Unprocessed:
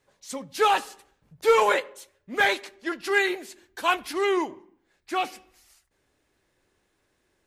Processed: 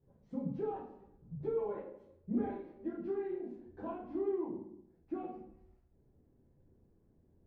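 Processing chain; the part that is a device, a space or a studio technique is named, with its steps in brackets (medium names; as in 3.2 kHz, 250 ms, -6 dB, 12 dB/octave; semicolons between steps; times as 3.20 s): 2.34–4.27 s: doubling 33 ms -4.5 dB; television next door (compression 4:1, threshold -35 dBFS, peak gain reduction 16.5 dB; low-pass 300 Hz 12 dB/octave; reverberation RT60 0.60 s, pre-delay 4 ms, DRR -6.5 dB); trim +1.5 dB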